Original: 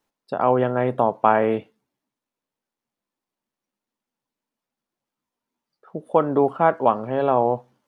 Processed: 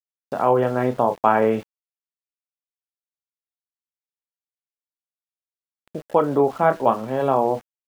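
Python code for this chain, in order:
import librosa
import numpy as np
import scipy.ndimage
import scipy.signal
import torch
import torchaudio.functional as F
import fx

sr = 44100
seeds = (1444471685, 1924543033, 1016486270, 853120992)

y = fx.chorus_voices(x, sr, voices=4, hz=0.46, base_ms=29, depth_ms=3.0, mix_pct=30)
y = np.where(np.abs(y) >= 10.0 ** (-42.5 / 20.0), y, 0.0)
y = y * librosa.db_to_amplitude(2.5)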